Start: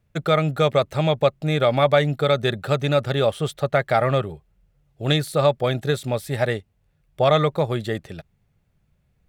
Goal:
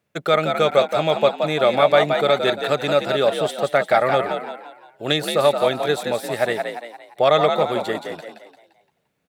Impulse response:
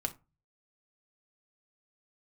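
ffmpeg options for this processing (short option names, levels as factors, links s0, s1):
-filter_complex "[0:a]highpass=270,asplit=6[s0][s1][s2][s3][s4][s5];[s1]adelay=173,afreqshift=56,volume=0.501[s6];[s2]adelay=346,afreqshift=112,volume=0.211[s7];[s3]adelay=519,afreqshift=168,volume=0.0881[s8];[s4]adelay=692,afreqshift=224,volume=0.0372[s9];[s5]adelay=865,afreqshift=280,volume=0.0157[s10];[s0][s6][s7][s8][s9][s10]amix=inputs=6:normalize=0,volume=1.26"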